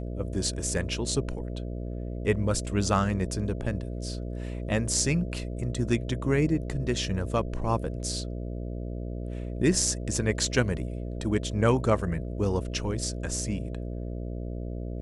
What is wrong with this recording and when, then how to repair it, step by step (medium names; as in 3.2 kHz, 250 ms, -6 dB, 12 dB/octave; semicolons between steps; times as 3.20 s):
buzz 60 Hz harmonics 11 -34 dBFS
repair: de-hum 60 Hz, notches 11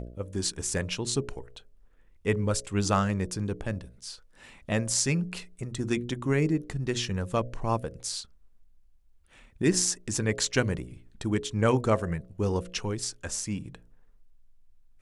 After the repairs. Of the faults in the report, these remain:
nothing left